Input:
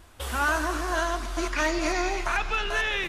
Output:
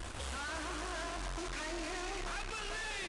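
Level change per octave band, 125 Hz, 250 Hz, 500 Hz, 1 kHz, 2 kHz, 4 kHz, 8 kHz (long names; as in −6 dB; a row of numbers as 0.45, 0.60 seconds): −10.0, −13.0, −13.5, −14.0, −14.0, −9.5, −8.0 decibels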